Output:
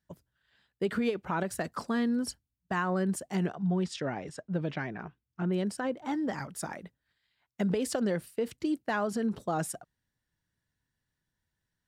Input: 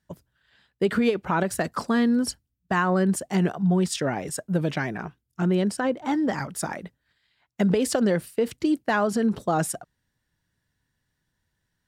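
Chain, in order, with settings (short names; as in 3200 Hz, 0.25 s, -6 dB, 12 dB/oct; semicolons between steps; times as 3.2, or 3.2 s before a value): 3.46–5.51 LPF 6400 Hz -> 3100 Hz 12 dB/oct; gain -7.5 dB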